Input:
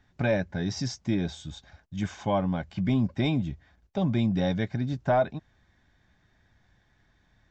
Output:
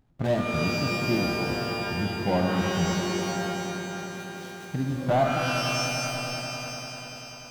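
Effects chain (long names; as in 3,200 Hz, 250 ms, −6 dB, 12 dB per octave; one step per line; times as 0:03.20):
running median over 25 samples
tape wow and flutter 150 cents
0:02.85–0:04.70: first difference
on a send: echo that builds up and dies away 98 ms, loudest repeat 5, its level −14.5 dB
on the sum: reverb with rising layers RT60 2.2 s, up +12 semitones, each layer −2 dB, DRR 3 dB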